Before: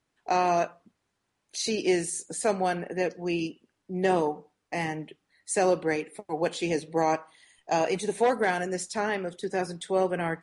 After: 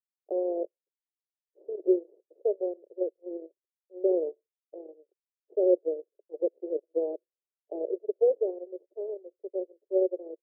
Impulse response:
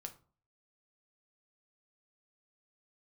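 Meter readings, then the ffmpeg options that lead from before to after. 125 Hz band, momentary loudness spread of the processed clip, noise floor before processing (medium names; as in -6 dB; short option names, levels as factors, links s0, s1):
under -40 dB, 17 LU, -79 dBFS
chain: -af "aeval=exprs='0.266*(cos(1*acos(clip(val(0)/0.266,-1,1)))-cos(1*PI/2))+0.0188*(cos(6*acos(clip(val(0)/0.266,-1,1)))-cos(6*PI/2))+0.0376*(cos(7*acos(clip(val(0)/0.266,-1,1)))-cos(7*PI/2))':c=same,asuperpass=centerf=450:order=8:qfactor=1.9,volume=1.41"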